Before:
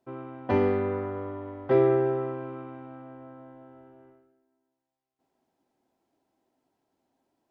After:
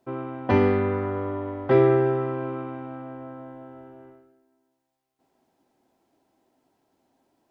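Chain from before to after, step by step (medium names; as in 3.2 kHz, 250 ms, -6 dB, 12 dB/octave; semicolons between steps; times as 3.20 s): dynamic bell 530 Hz, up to -5 dB, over -34 dBFS, Q 0.83; trim +7 dB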